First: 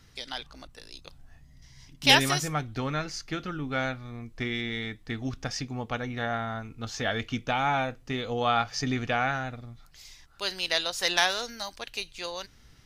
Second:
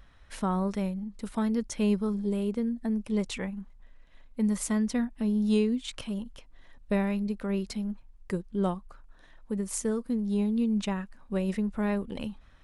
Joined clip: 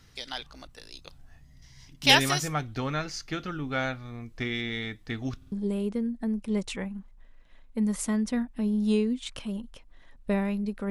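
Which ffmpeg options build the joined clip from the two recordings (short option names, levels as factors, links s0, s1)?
-filter_complex "[0:a]apad=whole_dur=10.9,atrim=end=10.9,asplit=3[s0][s1][s2];[s0]atrim=end=5.422[s3];[s1]atrim=start=5.368:end=5.422[s4];[s2]atrim=start=5.368:end=5.422[s5];[1:a]atrim=start=2.138:end=7.52[s6];[s3][s4]acrossfade=d=0.004:c1=hsin:c2=hsin[s7];[s7][s5]acrossfade=d=0.004:c1=hsin:c2=hsin[s8];[s8][s6]acrossfade=d=0.004:c1=hsin:c2=hsin"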